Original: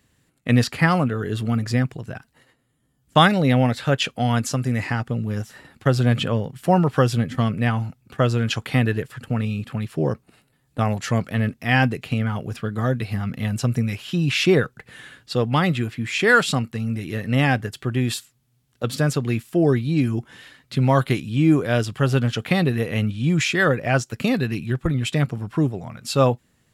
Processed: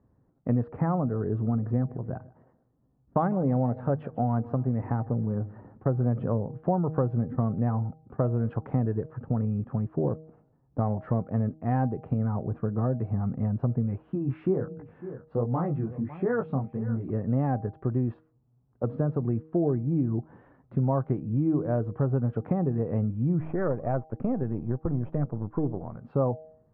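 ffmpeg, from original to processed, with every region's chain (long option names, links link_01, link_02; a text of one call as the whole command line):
ffmpeg -i in.wav -filter_complex "[0:a]asettb=1/sr,asplit=3[link_01][link_02][link_03];[link_01]atrim=end=1.514[link_04];[link_02]atrim=start=1.51:end=6.24,asetpts=PTS-STARTPTS,afade=type=in:duration=0.004:curve=qsin,afade=type=out:start_time=4.726:duration=0.004:curve=qsin,bandreject=frequency=50:width_type=h:width=6,bandreject=frequency=100:width_type=h:width=6,bandreject=frequency=150:width_type=h:width=6,aecho=1:1:151|302|453:0.075|0.0337|0.0152,atrim=end_sample=208593[link_05];[link_03]atrim=start=6.236[link_06];[link_04][link_05]acrossfade=duration=0.004:curve1=hsin:curve2=qsin[link_07];[link_07][link_06]acrossfade=duration=0.004:curve1=qsin:curve2=hsin,asettb=1/sr,asplit=3[link_08][link_09][link_10];[link_08]atrim=end=13.984[link_11];[link_09]atrim=start=13.98:end=17.1,asetpts=PTS-STARTPTS,afade=type=in:duration=0.004:curve=qsin,afade=type=out:start_time=3.116:duration=0.004:curve=qsin,aecho=1:1:553:0.112,atrim=end_sample=137592,flanger=delay=16.5:depth=7.1:speed=1.3[link_12];[link_10]atrim=start=17.096[link_13];[link_11][link_12]acrossfade=duration=0.004:curve1=hsin:curve2=qsin[link_14];[link_14][link_13]acrossfade=duration=0.004:curve1=qsin:curve2=hsin,asettb=1/sr,asplit=3[link_15][link_16][link_17];[link_15]atrim=end=23.404[link_18];[link_16]atrim=start=23.4:end=25.97,asetpts=PTS-STARTPTS,afade=type=in:duration=0.004:curve=qsin,afade=type=out:start_time=2.566:duration=0.004:curve=qsin,aeval=exprs='if(lt(val(0),0),0.447*val(0),val(0))':channel_layout=same,bass=frequency=250:gain=-1,treble=frequency=4000:gain=-13[link_19];[link_17]atrim=start=25.966[link_20];[link_18][link_19]acrossfade=duration=0.004:curve1=hsin:curve2=qsin[link_21];[link_21][link_20]acrossfade=duration=0.004:curve1=qsin:curve2=hsin,lowpass=frequency=1000:width=0.5412,lowpass=frequency=1000:width=1.3066,bandreject=frequency=157.9:width_type=h:width=4,bandreject=frequency=315.8:width_type=h:width=4,bandreject=frequency=473.7:width_type=h:width=4,bandreject=frequency=631.6:width_type=h:width=4,bandreject=frequency=789.5:width_type=h:width=4,acompressor=threshold=-24dB:ratio=3" out.wav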